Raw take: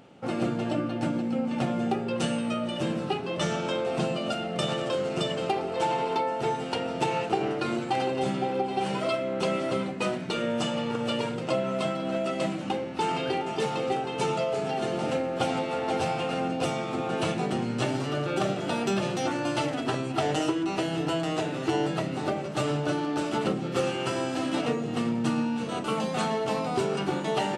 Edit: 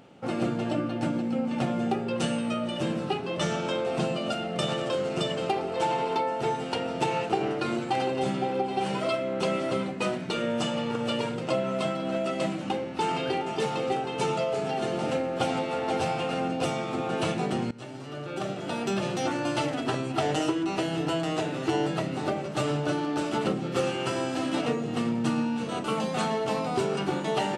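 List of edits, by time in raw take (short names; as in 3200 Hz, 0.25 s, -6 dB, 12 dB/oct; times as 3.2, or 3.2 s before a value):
17.71–19.22 fade in, from -18 dB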